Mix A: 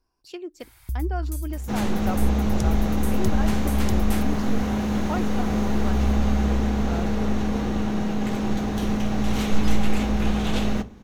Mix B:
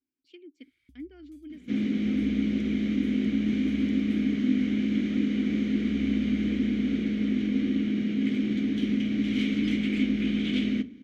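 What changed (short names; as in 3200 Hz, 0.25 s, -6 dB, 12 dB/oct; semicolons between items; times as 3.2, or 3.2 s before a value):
first sound -3.5 dB; second sound +10.0 dB; master: add vowel filter i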